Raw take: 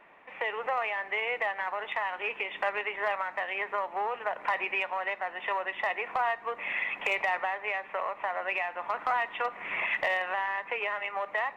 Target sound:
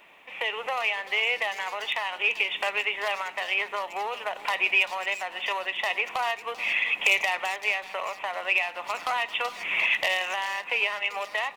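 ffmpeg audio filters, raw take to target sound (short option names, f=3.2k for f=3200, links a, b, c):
-filter_complex "[0:a]asplit=2[a][b];[b]adelay=390,highpass=300,lowpass=3.4k,asoftclip=type=hard:threshold=-28dB,volume=-16dB[c];[a][c]amix=inputs=2:normalize=0,aexciter=amount=5.6:drive=4.7:freq=2.5k"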